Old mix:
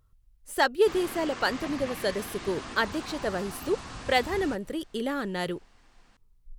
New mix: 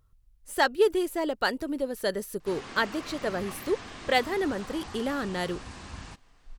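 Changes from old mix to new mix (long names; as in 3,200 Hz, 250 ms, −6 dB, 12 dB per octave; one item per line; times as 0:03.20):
background: entry +1.60 s
reverb: off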